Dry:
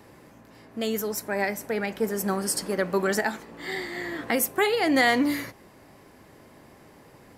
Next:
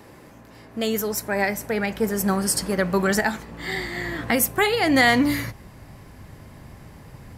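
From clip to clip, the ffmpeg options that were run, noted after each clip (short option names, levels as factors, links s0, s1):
-af "asubboost=boost=6:cutoff=140,volume=1.68"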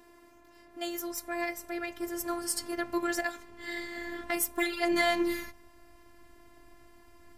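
-af "aeval=exprs='0.531*(cos(1*acos(clip(val(0)/0.531,-1,1)))-cos(1*PI/2))+0.0106*(cos(7*acos(clip(val(0)/0.531,-1,1)))-cos(7*PI/2))':c=same,afftfilt=real='hypot(re,im)*cos(PI*b)':imag='0':win_size=512:overlap=0.75,volume=0.531"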